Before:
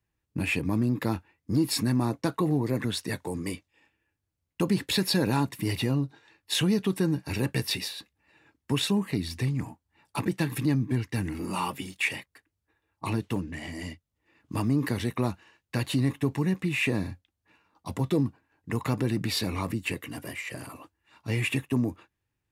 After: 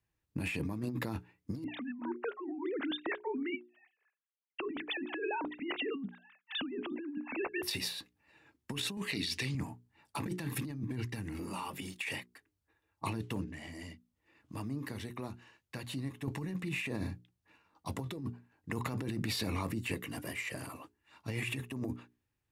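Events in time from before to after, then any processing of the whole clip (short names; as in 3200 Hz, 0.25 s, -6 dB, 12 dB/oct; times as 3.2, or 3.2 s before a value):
1.64–7.63 sine-wave speech
8.97–9.55 weighting filter D
11.06–11.94 compressor, threshold -33 dBFS
13.44–16.28 compressor 1.5:1, threshold -50 dBFS
whole clip: notches 60/120/180/240/300/360/420 Hz; negative-ratio compressor -31 dBFS, ratio -1; gain -5.5 dB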